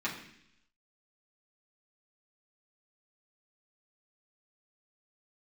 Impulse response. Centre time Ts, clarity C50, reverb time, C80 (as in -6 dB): 27 ms, 7.5 dB, 0.70 s, 10.0 dB